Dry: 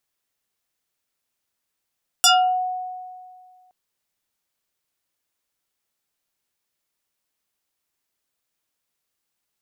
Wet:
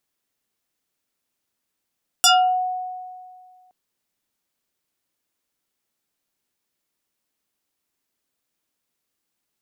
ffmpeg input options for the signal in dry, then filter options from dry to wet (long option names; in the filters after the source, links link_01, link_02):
-f lavfi -i "aevalsrc='0.316*pow(10,-3*t/1.99)*sin(2*PI*736*t+5.2*pow(10,-3*t/0.36)*sin(2*PI*2.88*736*t))':duration=1.47:sample_rate=44100"
-af "equalizer=frequency=260:width=1:gain=6"